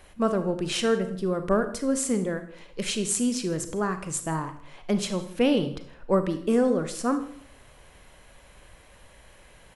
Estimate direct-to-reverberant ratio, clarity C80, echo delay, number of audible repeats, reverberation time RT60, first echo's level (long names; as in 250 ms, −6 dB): 9.0 dB, 14.0 dB, 160 ms, 1, 0.60 s, −24.0 dB